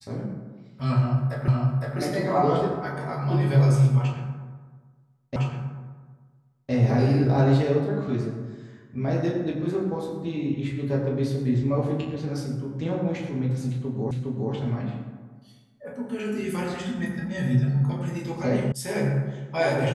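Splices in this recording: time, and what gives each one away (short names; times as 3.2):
1.48 repeat of the last 0.51 s
5.36 repeat of the last 1.36 s
14.11 repeat of the last 0.41 s
18.72 sound cut off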